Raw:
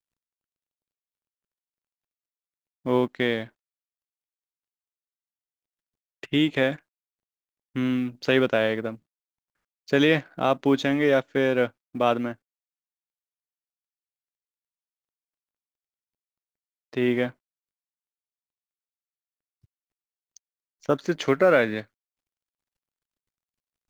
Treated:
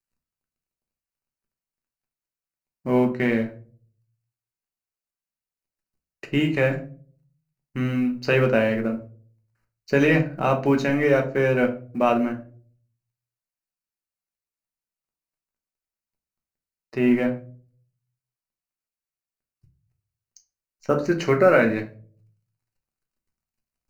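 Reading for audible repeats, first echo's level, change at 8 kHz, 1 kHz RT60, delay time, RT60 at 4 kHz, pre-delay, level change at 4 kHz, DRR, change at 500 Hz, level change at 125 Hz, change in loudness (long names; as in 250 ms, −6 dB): no echo audible, no echo audible, can't be measured, 0.35 s, no echo audible, 0.25 s, 5 ms, −5.5 dB, 2.5 dB, +2.0 dB, +6.5 dB, +2.0 dB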